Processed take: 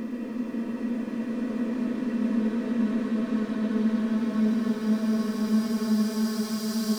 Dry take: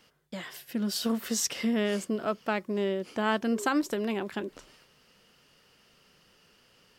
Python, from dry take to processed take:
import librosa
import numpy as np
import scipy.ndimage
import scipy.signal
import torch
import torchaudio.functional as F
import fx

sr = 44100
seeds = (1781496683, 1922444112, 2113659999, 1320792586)

p1 = fx.doppler_pass(x, sr, speed_mps=12, closest_m=7.2, pass_at_s=3.0)
p2 = fx.dereverb_blind(p1, sr, rt60_s=1.6)
p3 = fx.level_steps(p2, sr, step_db=14)
p4 = p2 + (p3 * librosa.db_to_amplitude(-3.0))
p5 = fx.leveller(p4, sr, passes=5)
p6 = fx.paulstretch(p5, sr, seeds[0], factor=42.0, window_s=0.25, from_s=0.68)
y = p6 * librosa.db_to_amplitude(-5.5)